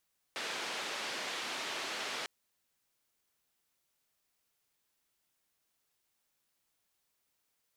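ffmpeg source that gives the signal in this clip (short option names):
-f lavfi -i "anoisesrc=c=white:d=1.9:r=44100:seed=1,highpass=f=300,lowpass=f=3800,volume=-26.6dB"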